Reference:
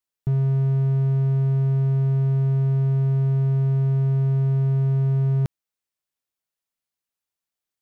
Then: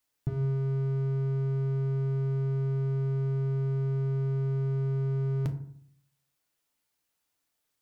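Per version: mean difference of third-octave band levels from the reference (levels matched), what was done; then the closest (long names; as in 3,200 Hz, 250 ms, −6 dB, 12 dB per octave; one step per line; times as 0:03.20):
2.0 dB: brickwall limiter −26.5 dBFS, peak gain reduction 11.5 dB
feedback delay network reverb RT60 0.61 s, low-frequency decay 1.3×, high-frequency decay 0.5×, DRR 4.5 dB
level +7 dB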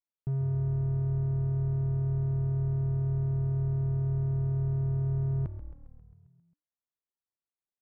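3.5 dB: low-pass filter 1,400 Hz 12 dB per octave
echo with shifted repeats 134 ms, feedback 63%, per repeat −38 Hz, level −11 dB
level −9 dB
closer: first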